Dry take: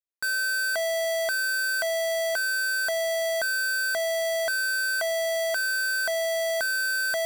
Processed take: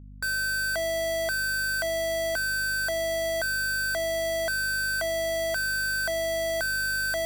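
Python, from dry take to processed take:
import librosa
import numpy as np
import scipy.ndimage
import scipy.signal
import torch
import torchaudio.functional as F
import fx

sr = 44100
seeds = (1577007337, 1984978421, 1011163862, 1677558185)

y = fx.octave_divider(x, sr, octaves=1, level_db=-5.0)
y = fx.quant_companded(y, sr, bits=8)
y = fx.add_hum(y, sr, base_hz=50, snr_db=17)
y = y * 10.0 ** (-1.5 / 20.0)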